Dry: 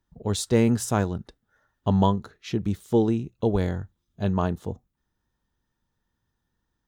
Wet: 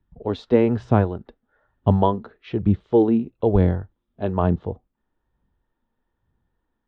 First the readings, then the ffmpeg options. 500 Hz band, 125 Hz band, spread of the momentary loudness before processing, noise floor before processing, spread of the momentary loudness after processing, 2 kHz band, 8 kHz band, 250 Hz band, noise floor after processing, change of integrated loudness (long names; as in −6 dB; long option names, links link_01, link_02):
+5.5 dB, +4.0 dB, 13 LU, −80 dBFS, 11 LU, 0.0 dB, can't be measured, +3.5 dB, −78 dBFS, +4.0 dB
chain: -filter_complex "[0:a]lowpass=frequency=3300:width=0.5412,lowpass=frequency=3300:width=1.3066,acrossover=split=330|910[link_01][link_02][link_03];[link_01]aphaser=in_gain=1:out_gain=1:delay=4.4:decay=0.68:speed=1.1:type=sinusoidal[link_04];[link_02]dynaudnorm=framelen=110:gausssize=3:maxgain=8dB[link_05];[link_04][link_05][link_03]amix=inputs=3:normalize=0,volume=-1dB"